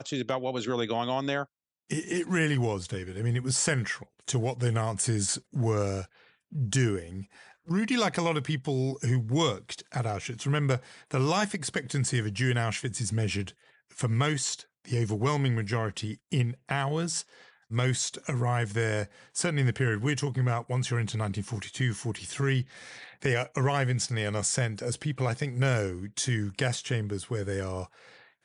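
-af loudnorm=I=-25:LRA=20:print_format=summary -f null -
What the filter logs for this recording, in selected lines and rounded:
Input Integrated:    -29.6 LUFS
Input True Peak:     -11.7 dBTP
Input LRA:             1.7 LU
Input Threshold:     -39.9 LUFS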